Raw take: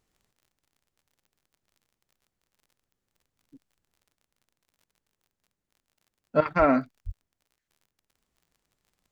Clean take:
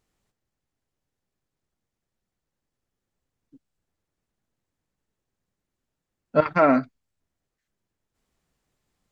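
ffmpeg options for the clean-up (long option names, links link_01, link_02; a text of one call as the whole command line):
ffmpeg -i in.wav -filter_complex "[0:a]adeclick=threshold=4,asplit=3[link_01][link_02][link_03];[link_01]afade=type=out:start_time=6.58:duration=0.02[link_04];[link_02]highpass=frequency=140:width=0.5412,highpass=frequency=140:width=1.3066,afade=type=in:start_time=6.58:duration=0.02,afade=type=out:start_time=6.7:duration=0.02[link_05];[link_03]afade=type=in:start_time=6.7:duration=0.02[link_06];[link_04][link_05][link_06]amix=inputs=3:normalize=0,asplit=3[link_07][link_08][link_09];[link_07]afade=type=out:start_time=7.05:duration=0.02[link_10];[link_08]highpass=frequency=140:width=0.5412,highpass=frequency=140:width=1.3066,afade=type=in:start_time=7.05:duration=0.02,afade=type=out:start_time=7.17:duration=0.02[link_11];[link_09]afade=type=in:start_time=7.17:duration=0.02[link_12];[link_10][link_11][link_12]amix=inputs=3:normalize=0,asetnsamples=nb_out_samples=441:pad=0,asendcmd='4.15 volume volume 3dB',volume=0dB" out.wav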